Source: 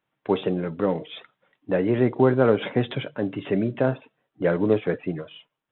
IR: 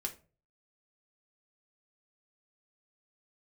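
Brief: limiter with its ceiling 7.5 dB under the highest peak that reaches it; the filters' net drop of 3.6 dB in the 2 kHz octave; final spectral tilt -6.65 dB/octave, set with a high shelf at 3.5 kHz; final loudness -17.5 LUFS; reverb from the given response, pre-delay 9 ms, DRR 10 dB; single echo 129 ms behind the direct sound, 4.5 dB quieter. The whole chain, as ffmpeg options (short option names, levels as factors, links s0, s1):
-filter_complex "[0:a]equalizer=f=2000:t=o:g=-6,highshelf=f=3500:g=4,alimiter=limit=0.211:level=0:latency=1,aecho=1:1:129:0.596,asplit=2[s0][s1];[1:a]atrim=start_sample=2205,adelay=9[s2];[s1][s2]afir=irnorm=-1:irlink=0,volume=0.316[s3];[s0][s3]amix=inputs=2:normalize=0,volume=2.37"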